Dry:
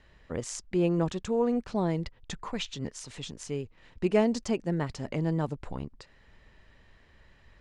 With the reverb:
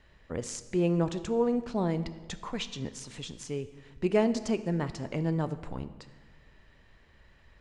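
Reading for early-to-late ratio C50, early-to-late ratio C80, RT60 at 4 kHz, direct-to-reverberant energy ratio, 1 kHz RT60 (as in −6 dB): 14.0 dB, 15.0 dB, 1.1 s, 11.5 dB, 1.4 s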